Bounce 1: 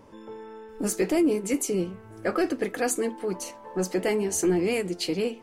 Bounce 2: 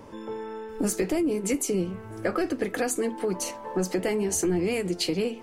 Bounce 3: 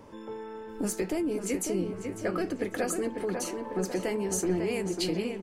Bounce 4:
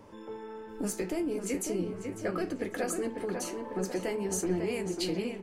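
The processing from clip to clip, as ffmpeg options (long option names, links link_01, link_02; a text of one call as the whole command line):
ffmpeg -i in.wav -filter_complex "[0:a]acrossover=split=140[link_01][link_02];[link_02]acompressor=threshold=-30dB:ratio=6[link_03];[link_01][link_03]amix=inputs=2:normalize=0,volume=6dB" out.wav
ffmpeg -i in.wav -filter_complex "[0:a]asplit=2[link_01][link_02];[link_02]adelay=547,lowpass=frequency=2800:poles=1,volume=-5.5dB,asplit=2[link_03][link_04];[link_04]adelay=547,lowpass=frequency=2800:poles=1,volume=0.53,asplit=2[link_05][link_06];[link_06]adelay=547,lowpass=frequency=2800:poles=1,volume=0.53,asplit=2[link_07][link_08];[link_08]adelay=547,lowpass=frequency=2800:poles=1,volume=0.53,asplit=2[link_09][link_10];[link_10]adelay=547,lowpass=frequency=2800:poles=1,volume=0.53,asplit=2[link_11][link_12];[link_12]adelay=547,lowpass=frequency=2800:poles=1,volume=0.53,asplit=2[link_13][link_14];[link_14]adelay=547,lowpass=frequency=2800:poles=1,volume=0.53[link_15];[link_01][link_03][link_05][link_07][link_09][link_11][link_13][link_15]amix=inputs=8:normalize=0,volume=-4.5dB" out.wav
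ffmpeg -i in.wav -af "flanger=delay=9.4:depth=8.8:regen=-68:speed=0.45:shape=triangular,volume=2dB" out.wav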